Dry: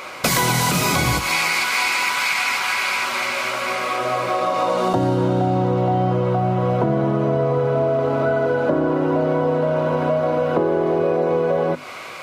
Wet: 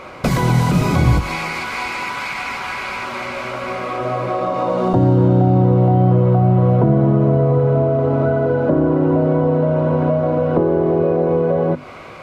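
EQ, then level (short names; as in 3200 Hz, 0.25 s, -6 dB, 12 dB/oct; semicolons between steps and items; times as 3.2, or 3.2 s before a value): tilt -3.5 dB/oct; -1.5 dB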